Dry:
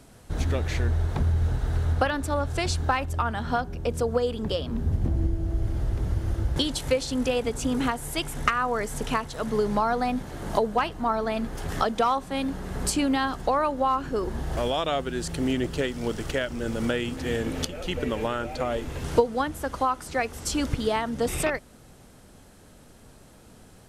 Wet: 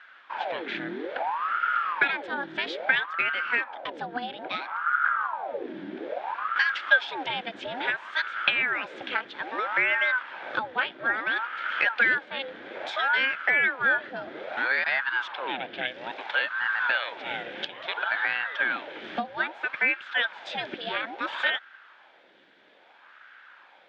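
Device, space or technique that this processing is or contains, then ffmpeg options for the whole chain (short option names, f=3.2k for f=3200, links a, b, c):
voice changer toy: -filter_complex "[0:a]asettb=1/sr,asplit=3[a][b][c];[a]atrim=end=15.274[d];[b]atrim=start=15.27:end=15.86,asetpts=PTS-STARTPTS,afade=t=in:d=0.004:c=qsin,afade=t=out:st=0.586:d=0.004:c=qsin,lowpass=4.3k[e];[c]atrim=start=15.856[f];[d][e]acrossfade=d=0.004:c1=hsin:c2=qsin[g];[g][f]acrossfade=d=0.004:c1=qsin:c2=hsin,aeval=exprs='val(0)*sin(2*PI*800*n/s+800*0.7/0.6*sin(2*PI*0.6*n/s))':c=same,highpass=430,equalizer=f=440:t=q:w=4:g=-6,equalizer=f=700:t=q:w=4:g=-4,equalizer=f=1.1k:t=q:w=4:g=-8,equalizer=f=1.6k:t=q:w=4:g=10,equalizer=f=2.3k:t=q:w=4:g=5,equalizer=f=3.4k:t=q:w=4:g=9,lowpass=f=3.6k:w=0.5412,lowpass=f=3.6k:w=1.3066"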